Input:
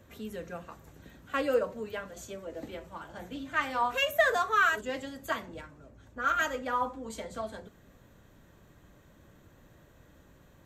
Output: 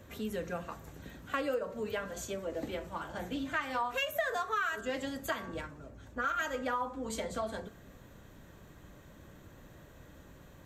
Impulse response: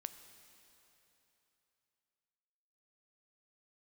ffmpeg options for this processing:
-af "bandreject=f=113.7:t=h:w=4,bandreject=f=227.4:t=h:w=4,bandreject=f=341.1:t=h:w=4,bandreject=f=454.8:t=h:w=4,bandreject=f=568.5:t=h:w=4,bandreject=f=682.2:t=h:w=4,bandreject=f=795.9:t=h:w=4,bandreject=f=909.6:t=h:w=4,bandreject=f=1023.3:t=h:w=4,bandreject=f=1137:t=h:w=4,bandreject=f=1250.7:t=h:w=4,bandreject=f=1364.4:t=h:w=4,bandreject=f=1478.1:t=h:w=4,bandreject=f=1591.8:t=h:w=4,bandreject=f=1705.5:t=h:w=4,bandreject=f=1819.2:t=h:w=4,acompressor=threshold=0.0178:ratio=5,volume=1.58"

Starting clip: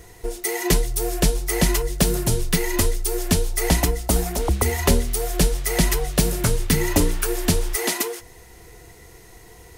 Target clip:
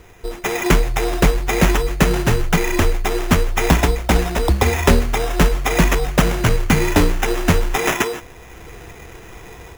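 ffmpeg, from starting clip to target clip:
-af "dynaudnorm=f=270:g=3:m=2.51,acrusher=samples=10:mix=1:aa=0.000001"

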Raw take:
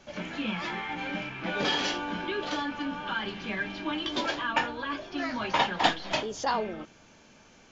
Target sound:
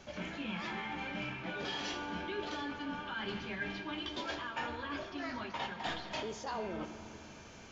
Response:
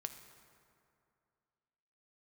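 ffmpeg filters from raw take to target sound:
-filter_complex "[0:a]equalizer=f=81:w=4.9:g=14.5,areverse,acompressor=threshold=0.01:ratio=6,areverse[s0];[1:a]atrim=start_sample=2205[s1];[s0][s1]afir=irnorm=-1:irlink=0,volume=1.88"

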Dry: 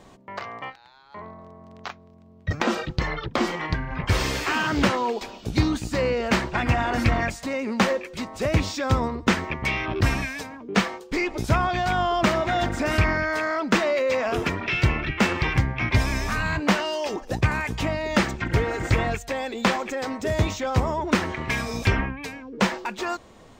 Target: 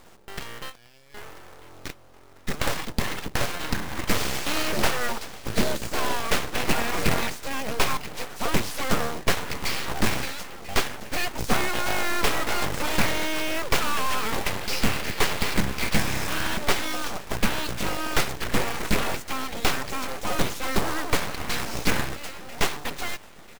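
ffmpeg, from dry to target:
-af "aecho=1:1:992|1984|2976|3968:0.126|0.0604|0.029|0.0139,aeval=exprs='abs(val(0))':c=same,acrusher=bits=2:mode=log:mix=0:aa=0.000001"

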